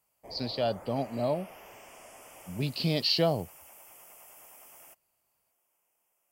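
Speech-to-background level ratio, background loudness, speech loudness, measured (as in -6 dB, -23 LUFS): 19.5 dB, -49.5 LUFS, -30.0 LUFS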